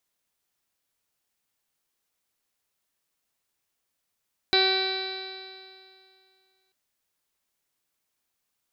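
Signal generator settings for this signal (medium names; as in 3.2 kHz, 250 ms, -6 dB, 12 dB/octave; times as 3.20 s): stretched partials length 2.19 s, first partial 379 Hz, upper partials -4/-14/-5/-10.5/-4/-15/-14.5/-12/4/-9/-11/-19 dB, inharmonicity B 0.00091, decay 2.36 s, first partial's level -23.5 dB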